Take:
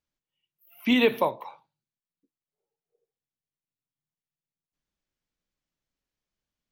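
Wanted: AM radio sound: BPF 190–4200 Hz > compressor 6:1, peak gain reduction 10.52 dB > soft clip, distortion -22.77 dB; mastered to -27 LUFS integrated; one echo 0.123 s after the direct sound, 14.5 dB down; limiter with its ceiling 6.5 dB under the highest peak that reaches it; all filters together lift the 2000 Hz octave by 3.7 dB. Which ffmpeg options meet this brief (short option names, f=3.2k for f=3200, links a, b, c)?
-af "equalizer=f=2k:t=o:g=5,alimiter=limit=-15dB:level=0:latency=1,highpass=190,lowpass=4.2k,aecho=1:1:123:0.188,acompressor=threshold=-31dB:ratio=6,asoftclip=threshold=-23dB,volume=10dB"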